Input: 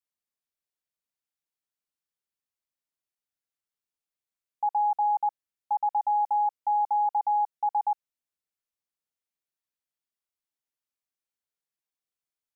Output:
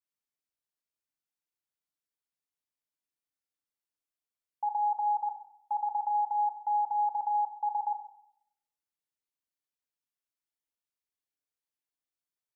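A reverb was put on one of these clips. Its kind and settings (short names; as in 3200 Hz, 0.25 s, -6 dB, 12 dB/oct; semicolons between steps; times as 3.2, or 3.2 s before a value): FDN reverb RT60 0.72 s, low-frequency decay 1.25×, high-frequency decay 0.85×, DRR 5 dB; gain -5 dB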